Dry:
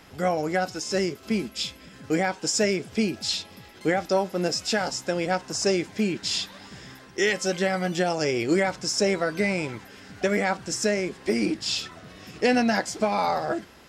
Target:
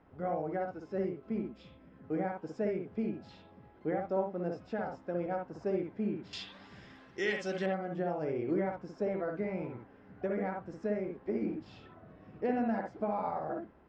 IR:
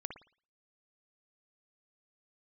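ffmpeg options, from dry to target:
-filter_complex "[0:a]asetnsamples=n=441:p=0,asendcmd='6.33 lowpass f 3600;7.66 lowpass f 1100',lowpass=1100[s0];[1:a]atrim=start_sample=2205,atrim=end_sample=3969,asetrate=42336,aresample=44100[s1];[s0][s1]afir=irnorm=-1:irlink=0,volume=0.447"

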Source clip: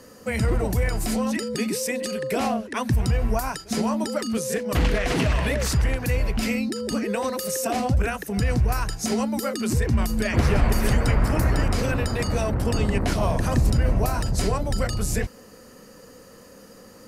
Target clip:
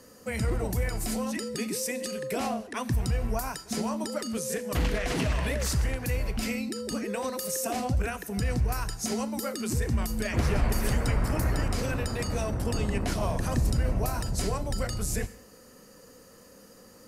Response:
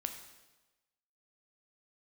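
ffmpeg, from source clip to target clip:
-filter_complex "[0:a]asplit=2[s0][s1];[s1]bass=f=250:g=0,treble=f=4000:g=9[s2];[1:a]atrim=start_sample=2205,afade=t=out:st=0.25:d=0.01,atrim=end_sample=11466[s3];[s2][s3]afir=irnorm=-1:irlink=0,volume=0.473[s4];[s0][s4]amix=inputs=2:normalize=0,volume=0.355"

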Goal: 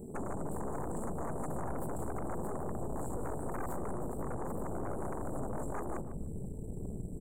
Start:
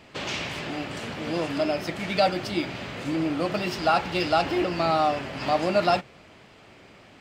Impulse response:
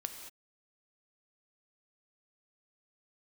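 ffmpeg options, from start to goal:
-filter_complex "[0:a]asubboost=boost=6.5:cutoff=120,acrossover=split=3400[s0][s1];[s1]acompressor=threshold=0.00631:ratio=4:attack=1:release=60[s2];[s0][s2]amix=inputs=2:normalize=0,afftfilt=real='re*lt(hypot(re,im),0.178)':imag='im*lt(hypot(re,im),0.178)':win_size=1024:overlap=0.75,aecho=1:1:4.9:0.46,afftfilt=real='re*(1-between(b*sr/4096,500,7500))':imag='im*(1-between(b*sr/4096,500,7500))':win_size=4096:overlap=0.75,alimiter=level_in=3.35:limit=0.0631:level=0:latency=1:release=242,volume=0.299,aeval=exprs='0.0316*(cos(1*acos(clip(val(0)/0.0316,-1,1)))-cos(1*PI/2))+0.0112*(cos(3*acos(clip(val(0)/0.0316,-1,1)))-cos(3*PI/2))+0.0158*(cos(7*acos(clip(val(0)/0.0316,-1,1)))-cos(7*PI/2))+0.0112*(cos(8*acos(clip(val(0)/0.0316,-1,1)))-cos(8*PI/2))':c=same,asplit=2[s3][s4];[s4]adelay=149,lowpass=f=1200:p=1,volume=0.355,asplit=2[s5][s6];[s6]adelay=149,lowpass=f=1200:p=1,volume=0.23,asplit=2[s7][s8];[s8]adelay=149,lowpass=f=1200:p=1,volume=0.23[s9];[s3][s5][s7][s9]amix=inputs=4:normalize=0,volume=0.841"

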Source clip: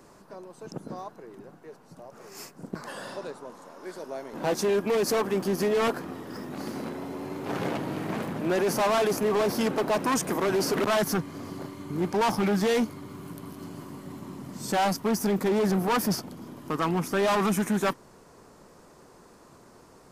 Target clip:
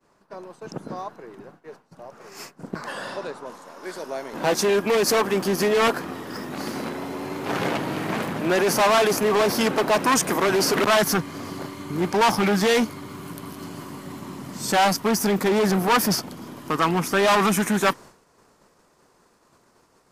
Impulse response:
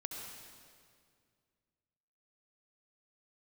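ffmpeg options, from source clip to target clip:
-af "asetnsamples=n=441:p=0,asendcmd='3.46 highshelf g -4',highshelf=f=4800:g=-11.5,agate=range=0.0224:threshold=0.00631:ratio=3:detection=peak,tiltshelf=f=970:g=-4,acontrast=79"

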